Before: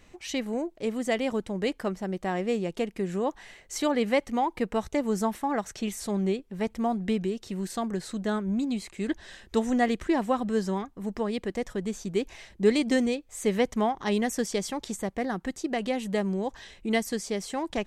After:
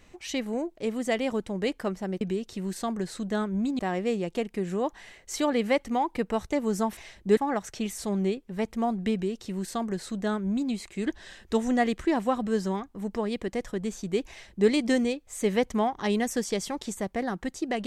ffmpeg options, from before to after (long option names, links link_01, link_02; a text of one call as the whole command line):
ffmpeg -i in.wav -filter_complex "[0:a]asplit=5[link_01][link_02][link_03][link_04][link_05];[link_01]atrim=end=2.212[link_06];[link_02]atrim=start=7.148:end=8.732[link_07];[link_03]atrim=start=2.208:end=5.392[link_08];[link_04]atrim=start=12.308:end=12.712[link_09];[link_05]atrim=start=5.388[link_10];[link_06][link_07]acrossfade=duration=0.004:curve1=hsin:curve2=hsin[link_11];[link_11][link_08]acrossfade=duration=0.004:curve1=hsin:curve2=hsin[link_12];[link_12][link_09]acrossfade=duration=0.004:curve1=hsin:curve2=hsin[link_13];[link_13][link_10]acrossfade=duration=0.004:curve1=hsin:curve2=hsin" out.wav